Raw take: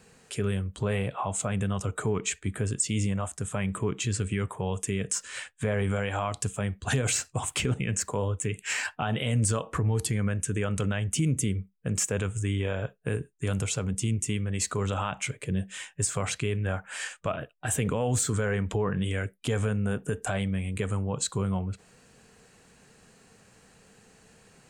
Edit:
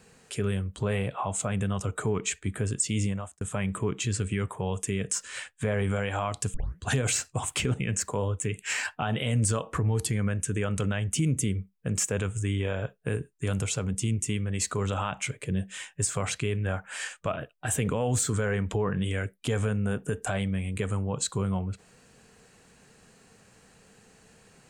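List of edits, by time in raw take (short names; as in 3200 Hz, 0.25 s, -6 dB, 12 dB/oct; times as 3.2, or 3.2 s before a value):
3.06–3.41 fade out
6.54 tape start 0.26 s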